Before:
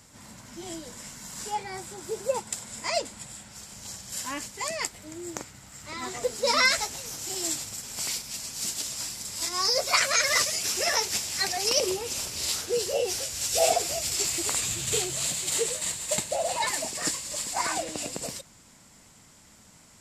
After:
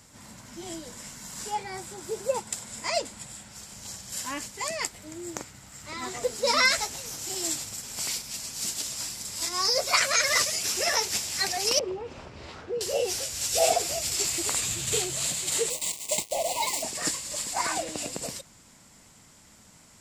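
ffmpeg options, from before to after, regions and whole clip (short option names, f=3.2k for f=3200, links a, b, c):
-filter_complex "[0:a]asettb=1/sr,asplit=3[a][b][c];[a]atrim=end=11.794[d];[b]atrim=start=11.79:end=12.81,asetpts=PTS-STARTPTS,afade=t=in:d=0.004:c=qsin,afade=t=out:st=1.016:d=0.004:c=qsin,lowpass=1.5k,acompressor=threshold=-34dB:ratio=1.5:attack=3.2:release=140:knee=1:detection=peak[e];[c]atrim=start=12.806[f];[d][e]acrossfade=d=0.004:c1=hsin:c2=qsin[g];[g][f]acrossfade=d=0.004:c1=qsin:c2=hsin,asettb=1/sr,asplit=3[h][i][j];[h]atrim=end=15.704[k];[i]atrim=start=15.7:end=16.83,asetpts=PTS-STARTPTS,afade=t=in:d=0.004:c=qsin,afade=t=out:st=1.126:d=0.004:c=qsin,lowshelf=f=160:g=-12,acrusher=bits=4:mix=0:aa=0.5,asuperstop=centerf=1500:order=12:qfactor=1.8[l];[j]atrim=start=16.826[m];[k][l]acrossfade=d=0.004:c1=hsin:c2=qsin[n];[n][m]acrossfade=d=0.004:c1=qsin:c2=hsin"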